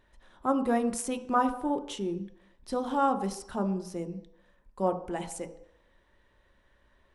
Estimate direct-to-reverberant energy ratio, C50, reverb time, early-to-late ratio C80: 7.5 dB, 13.0 dB, 0.70 s, 15.0 dB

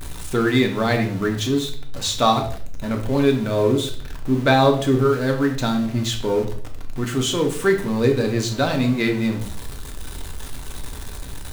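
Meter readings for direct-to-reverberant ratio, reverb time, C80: 2.5 dB, 0.55 s, 13.5 dB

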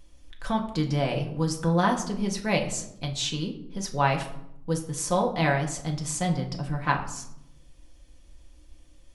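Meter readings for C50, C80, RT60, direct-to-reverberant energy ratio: 10.0 dB, 13.0 dB, 0.80 s, 0.5 dB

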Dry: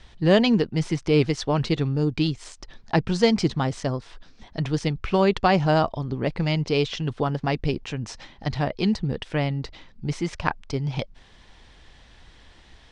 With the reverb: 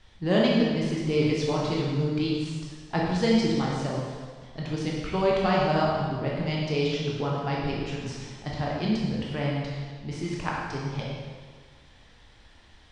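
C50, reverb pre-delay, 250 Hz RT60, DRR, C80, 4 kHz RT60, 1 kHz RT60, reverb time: -0.5 dB, 7 ms, 1.6 s, -4.5 dB, 1.5 dB, 1.5 s, 1.6 s, 1.6 s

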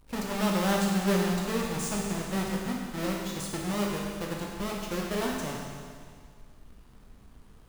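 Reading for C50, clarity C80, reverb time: 0.5 dB, 2.5 dB, 2.0 s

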